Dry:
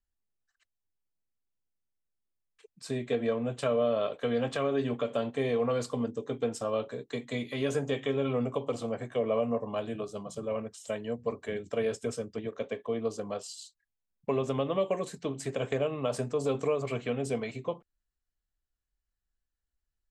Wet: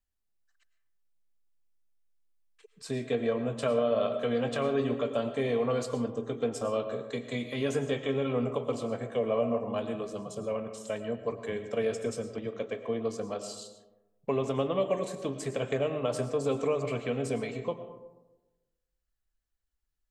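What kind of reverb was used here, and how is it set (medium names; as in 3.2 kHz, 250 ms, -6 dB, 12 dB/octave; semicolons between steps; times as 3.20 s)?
algorithmic reverb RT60 1.1 s, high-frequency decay 0.35×, pre-delay 70 ms, DRR 9 dB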